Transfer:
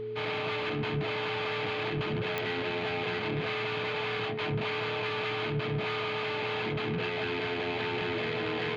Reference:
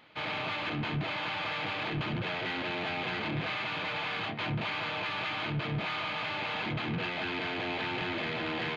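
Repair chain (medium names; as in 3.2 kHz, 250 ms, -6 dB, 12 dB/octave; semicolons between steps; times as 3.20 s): de-click; de-hum 116 Hz, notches 4; band-stop 430 Hz, Q 30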